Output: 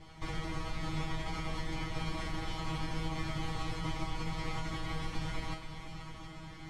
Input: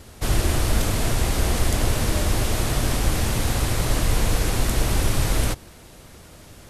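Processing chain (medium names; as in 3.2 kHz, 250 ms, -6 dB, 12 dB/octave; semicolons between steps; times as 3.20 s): comb filter that takes the minimum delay 0.94 ms; low-pass 3.7 kHz 12 dB/octave; reverse; upward compressor, threshold -38 dBFS; reverse; peak limiter -19 dBFS, peak gain reduction 10 dB; compression 1.5:1, threshold -32 dBFS, peak gain reduction 3.5 dB; feedback comb 160 Hz, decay 0.27 s, harmonics all, mix 100%; on a send: multi-head delay 242 ms, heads second and third, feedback 49%, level -12.5 dB; on the sum: trim +7.5 dB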